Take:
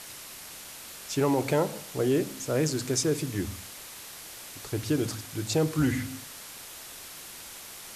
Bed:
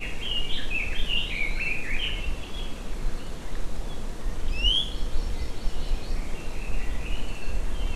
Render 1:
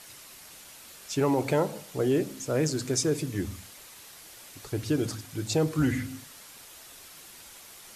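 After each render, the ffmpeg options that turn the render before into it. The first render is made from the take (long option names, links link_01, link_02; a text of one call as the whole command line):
ffmpeg -i in.wav -af "afftdn=noise_reduction=6:noise_floor=-44" out.wav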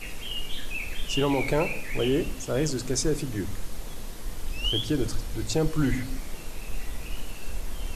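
ffmpeg -i in.wav -i bed.wav -filter_complex "[1:a]volume=-5dB[link_01];[0:a][link_01]amix=inputs=2:normalize=0" out.wav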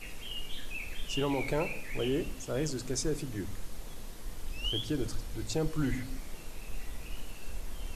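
ffmpeg -i in.wav -af "volume=-6.5dB" out.wav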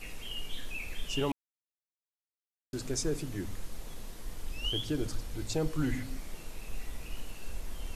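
ffmpeg -i in.wav -filter_complex "[0:a]asplit=3[link_01][link_02][link_03];[link_01]atrim=end=1.32,asetpts=PTS-STARTPTS,afade=type=out:start_time=1.316:duration=0.004:curve=hsin[link_04];[link_02]atrim=start=1.32:end=2.73,asetpts=PTS-STARTPTS,volume=0[link_05];[link_03]atrim=start=2.73,asetpts=PTS-STARTPTS,afade=type=in:duration=0.004:curve=hsin[link_06];[link_04][link_05][link_06]concat=n=3:v=0:a=1" out.wav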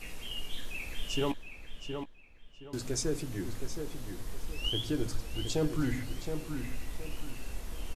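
ffmpeg -i in.wav -filter_complex "[0:a]asplit=2[link_01][link_02];[link_02]adelay=17,volume=-12dB[link_03];[link_01][link_03]amix=inputs=2:normalize=0,asplit=2[link_04][link_05];[link_05]adelay=719,lowpass=frequency=3800:poles=1,volume=-7dB,asplit=2[link_06][link_07];[link_07]adelay=719,lowpass=frequency=3800:poles=1,volume=0.3,asplit=2[link_08][link_09];[link_09]adelay=719,lowpass=frequency=3800:poles=1,volume=0.3,asplit=2[link_10][link_11];[link_11]adelay=719,lowpass=frequency=3800:poles=1,volume=0.3[link_12];[link_06][link_08][link_10][link_12]amix=inputs=4:normalize=0[link_13];[link_04][link_13]amix=inputs=2:normalize=0" out.wav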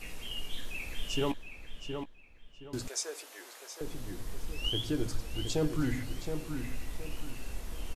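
ffmpeg -i in.wav -filter_complex "[0:a]asettb=1/sr,asplit=3[link_01][link_02][link_03];[link_01]atrim=end=2.884[link_04];[link_02]atrim=start=2.88:end=3.81,asetpts=PTS-STARTPTS,afade=type=in:duration=0.004:curve=qsin,afade=type=out:start_time=0.926:duration=0.004:curve=qsin,highpass=frequency=550:width=0.5412,highpass=frequency=550:width=1.3066[link_05];[link_03]atrim=start=3.806[link_06];[link_04][link_05]acrossfade=duration=0.004:curve1=hsin:curve2=qsin[link_07];[link_07][link_06]acrossfade=duration=0.004:curve1=qsin:curve2=hsin" out.wav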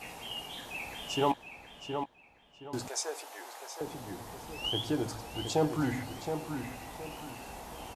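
ffmpeg -i in.wav -af "highpass=93,equalizer=frequency=820:width_type=o:width=0.75:gain=14" out.wav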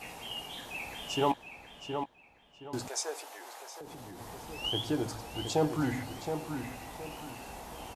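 ffmpeg -i in.wav -filter_complex "[0:a]asettb=1/sr,asplit=3[link_01][link_02][link_03];[link_01]atrim=end=3.254[link_04];[link_02]atrim=start=3.25:end=4.21,asetpts=PTS-STARTPTS,afade=type=in:duration=0.004:curve=qsin,afade=type=out:start_time=0.956:duration=0.004:curve=qsin,acompressor=threshold=-42dB:ratio=6:attack=3.2:release=140:knee=1:detection=peak[link_05];[link_03]atrim=start=4.206[link_06];[link_04][link_05]acrossfade=duration=0.004:curve1=hsin:curve2=qsin[link_07];[link_07][link_06]acrossfade=duration=0.004:curve1=qsin:curve2=hsin" out.wav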